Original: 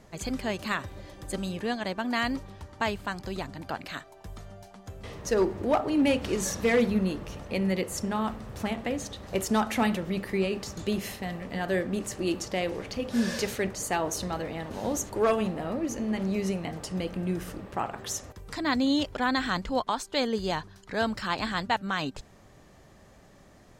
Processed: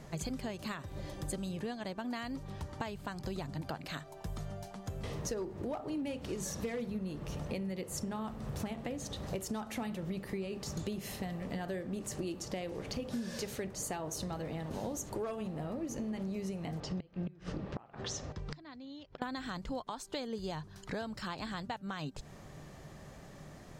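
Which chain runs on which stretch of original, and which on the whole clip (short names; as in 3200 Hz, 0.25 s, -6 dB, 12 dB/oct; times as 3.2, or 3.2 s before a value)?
16.8–19.22 LPF 5500 Hz 24 dB/oct + flipped gate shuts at -23 dBFS, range -26 dB
whole clip: bell 150 Hz +10.5 dB 0.21 oct; compressor 12:1, threshold -37 dBFS; dynamic EQ 1900 Hz, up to -4 dB, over -55 dBFS, Q 0.74; gain +2.5 dB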